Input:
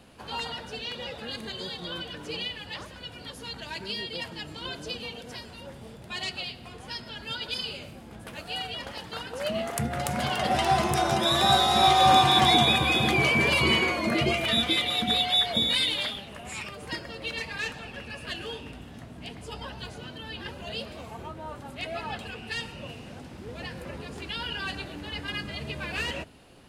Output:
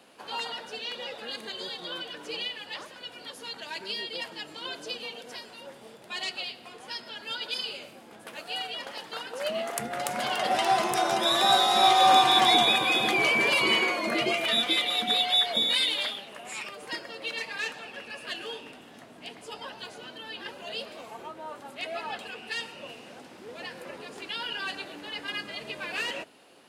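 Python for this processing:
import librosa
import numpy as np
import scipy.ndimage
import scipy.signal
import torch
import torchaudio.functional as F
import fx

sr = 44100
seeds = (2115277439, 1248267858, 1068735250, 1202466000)

y = scipy.signal.sosfilt(scipy.signal.butter(2, 330.0, 'highpass', fs=sr, output='sos'), x)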